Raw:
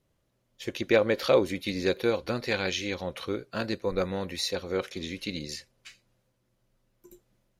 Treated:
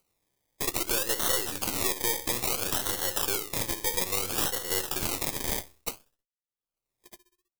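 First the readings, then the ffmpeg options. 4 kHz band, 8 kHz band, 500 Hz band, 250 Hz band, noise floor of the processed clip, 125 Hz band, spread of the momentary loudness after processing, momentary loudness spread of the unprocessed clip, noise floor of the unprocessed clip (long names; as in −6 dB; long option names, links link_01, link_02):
+2.5 dB, +14.5 dB, −8.5 dB, −7.5 dB, below −85 dBFS, −3.5 dB, 6 LU, 12 LU, −74 dBFS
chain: -filter_complex "[0:a]bandreject=frequency=50:width_type=h:width=6,bandreject=frequency=100:width_type=h:width=6,bandreject=frequency=150:width_type=h:width=6,bandreject=frequency=200:width_type=h:width=6,bandreject=frequency=250:width_type=h:width=6,bandreject=frequency=300:width_type=h:width=6,agate=range=-54dB:threshold=-48dB:ratio=16:detection=peak,bass=frequency=250:gain=-2,treble=frequency=4000:gain=14,aecho=1:1:2.4:0.54,acompressor=threshold=-33dB:ratio=8,aeval=exprs='0.112*(cos(1*acos(clip(val(0)/0.112,-1,1)))-cos(1*PI/2))+0.0178*(cos(5*acos(clip(val(0)/0.112,-1,1)))-cos(5*PI/2))+0.0224*(cos(8*acos(clip(val(0)/0.112,-1,1)))-cos(8*PI/2))':channel_layout=same,asplit=2[link_01][link_02];[link_02]adelay=64,lowpass=frequency=1400:poles=1,volume=-10dB,asplit=2[link_03][link_04];[link_04]adelay=64,lowpass=frequency=1400:poles=1,volume=0.45,asplit=2[link_05][link_06];[link_06]adelay=64,lowpass=frequency=1400:poles=1,volume=0.45,asplit=2[link_07][link_08];[link_08]adelay=64,lowpass=frequency=1400:poles=1,volume=0.45,asplit=2[link_09][link_10];[link_10]adelay=64,lowpass=frequency=1400:poles=1,volume=0.45[link_11];[link_03][link_05][link_07][link_09][link_11]amix=inputs=5:normalize=0[link_12];[link_01][link_12]amix=inputs=2:normalize=0,acrusher=samples=25:mix=1:aa=0.000001:lfo=1:lforange=15:lforate=0.59,crystalizer=i=6.5:c=0,acompressor=mode=upward:threshold=-38dB:ratio=2.5,volume=-4dB"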